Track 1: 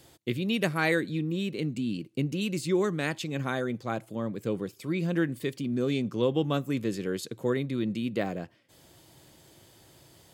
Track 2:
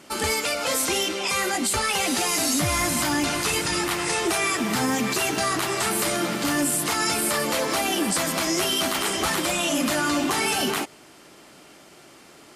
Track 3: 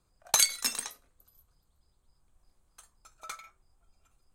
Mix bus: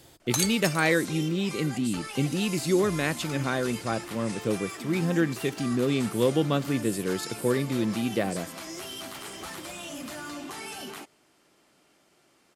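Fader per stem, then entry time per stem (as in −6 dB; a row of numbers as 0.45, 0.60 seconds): +2.5, −15.0, −4.0 decibels; 0.00, 0.20, 0.00 seconds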